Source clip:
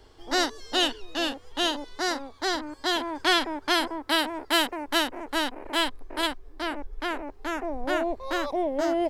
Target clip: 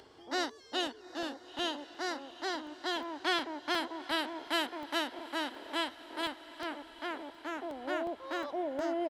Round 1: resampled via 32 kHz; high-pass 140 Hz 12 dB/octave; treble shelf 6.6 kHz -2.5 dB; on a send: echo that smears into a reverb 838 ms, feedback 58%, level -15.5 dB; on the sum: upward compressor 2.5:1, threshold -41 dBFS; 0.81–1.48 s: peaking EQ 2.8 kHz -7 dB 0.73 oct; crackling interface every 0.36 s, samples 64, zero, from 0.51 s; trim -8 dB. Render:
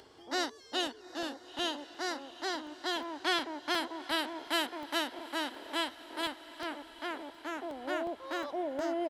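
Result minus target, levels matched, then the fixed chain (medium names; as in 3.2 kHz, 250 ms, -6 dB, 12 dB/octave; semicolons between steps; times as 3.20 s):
8 kHz band +2.5 dB
resampled via 32 kHz; high-pass 140 Hz 12 dB/octave; treble shelf 6.6 kHz -8.5 dB; on a send: echo that smears into a reverb 838 ms, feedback 58%, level -15.5 dB; on the sum: upward compressor 2.5:1, threshold -41 dBFS; 0.81–1.48 s: peaking EQ 2.8 kHz -7 dB 0.73 oct; crackling interface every 0.36 s, samples 64, zero, from 0.51 s; trim -8 dB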